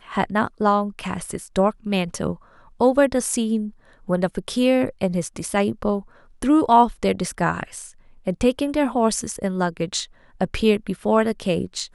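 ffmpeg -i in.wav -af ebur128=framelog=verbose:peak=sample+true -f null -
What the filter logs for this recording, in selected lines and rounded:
Integrated loudness:
  I:         -22.0 LUFS
  Threshold: -32.3 LUFS
Loudness range:
  LRA:         2.8 LU
  Threshold: -42.2 LUFS
  LRA low:   -23.7 LUFS
  LRA high:  -20.9 LUFS
Sample peak:
  Peak:       -3.9 dBFS
True peak:
  Peak:       -3.8 dBFS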